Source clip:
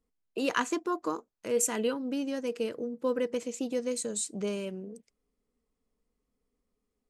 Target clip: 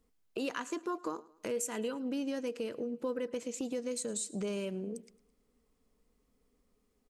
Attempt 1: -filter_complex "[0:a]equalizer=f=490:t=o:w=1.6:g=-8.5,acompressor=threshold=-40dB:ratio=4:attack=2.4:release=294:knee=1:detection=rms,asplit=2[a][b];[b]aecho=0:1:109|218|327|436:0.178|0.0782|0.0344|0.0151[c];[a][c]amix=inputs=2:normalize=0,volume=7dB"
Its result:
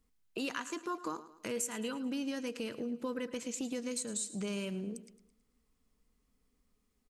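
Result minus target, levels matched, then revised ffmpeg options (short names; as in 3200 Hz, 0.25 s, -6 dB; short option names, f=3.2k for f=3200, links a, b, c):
echo-to-direct +6 dB; 500 Hz band -3.5 dB
-filter_complex "[0:a]acompressor=threshold=-40dB:ratio=4:attack=2.4:release=294:knee=1:detection=rms,asplit=2[a][b];[b]aecho=0:1:109|218|327:0.0891|0.0392|0.0173[c];[a][c]amix=inputs=2:normalize=0,volume=7dB"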